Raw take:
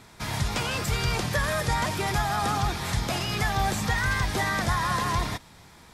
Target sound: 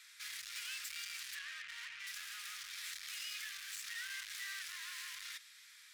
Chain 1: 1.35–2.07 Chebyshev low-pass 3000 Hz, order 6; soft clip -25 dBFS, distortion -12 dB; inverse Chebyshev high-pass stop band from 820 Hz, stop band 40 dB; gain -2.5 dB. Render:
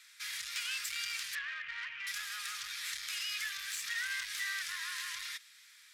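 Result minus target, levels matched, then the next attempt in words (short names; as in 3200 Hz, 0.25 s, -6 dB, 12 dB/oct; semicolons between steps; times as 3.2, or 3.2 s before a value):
soft clip: distortion -7 dB
1.35–2.07 Chebyshev low-pass 3000 Hz, order 6; soft clip -36.5 dBFS, distortion -5 dB; inverse Chebyshev high-pass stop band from 820 Hz, stop band 40 dB; gain -2.5 dB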